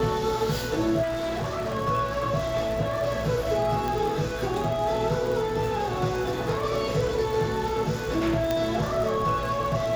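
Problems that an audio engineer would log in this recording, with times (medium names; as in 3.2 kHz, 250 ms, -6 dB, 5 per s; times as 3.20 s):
crackle 90 per s -31 dBFS
1.02–1.76 s: clipped -25.5 dBFS
3.88 s: pop
8.51 s: pop -12 dBFS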